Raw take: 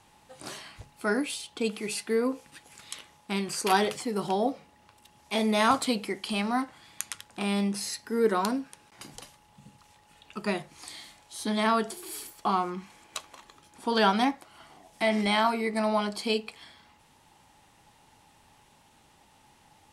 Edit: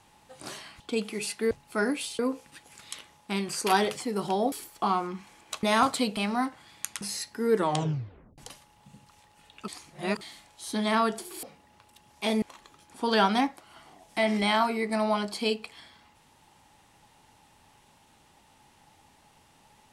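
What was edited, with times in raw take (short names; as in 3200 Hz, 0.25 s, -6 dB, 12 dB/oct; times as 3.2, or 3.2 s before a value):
0.8–1.48 move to 2.19
4.52–5.51 swap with 12.15–13.26
6.05–6.33 cut
7.17–7.73 cut
8.28 tape stop 0.82 s
10.4–10.93 reverse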